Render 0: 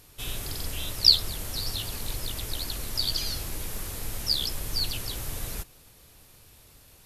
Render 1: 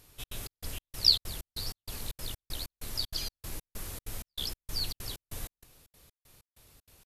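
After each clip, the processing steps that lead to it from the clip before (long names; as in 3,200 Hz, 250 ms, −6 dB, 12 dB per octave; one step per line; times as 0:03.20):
gate pattern "xxx.xx..xx.." 192 BPM −60 dB
level −5 dB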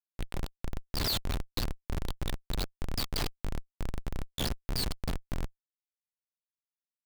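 downsampling to 11,025 Hz
echo ahead of the sound 111 ms −18.5 dB
comparator with hysteresis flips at −36.5 dBFS
level +7.5 dB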